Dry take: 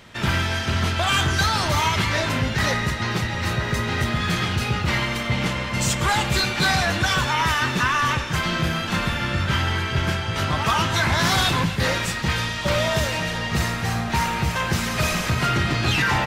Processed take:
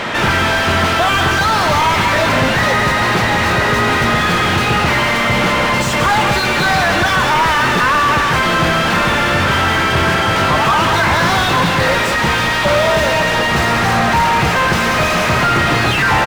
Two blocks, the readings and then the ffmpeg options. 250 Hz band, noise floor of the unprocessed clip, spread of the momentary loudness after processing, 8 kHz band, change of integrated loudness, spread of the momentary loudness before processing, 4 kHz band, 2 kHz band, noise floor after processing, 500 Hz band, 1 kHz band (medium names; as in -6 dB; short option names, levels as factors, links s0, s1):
+7.5 dB, -28 dBFS, 1 LU, +4.5 dB, +9.0 dB, 4 LU, +6.5 dB, +10.0 dB, -15 dBFS, +11.5 dB, +11.5 dB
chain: -filter_complex "[0:a]aecho=1:1:189:0.299,asplit=2[s0][s1];[s1]highpass=f=720:p=1,volume=63.1,asoftclip=type=tanh:threshold=0.335[s2];[s0][s2]amix=inputs=2:normalize=0,lowpass=f=1200:p=1,volume=0.501,volume=1.88"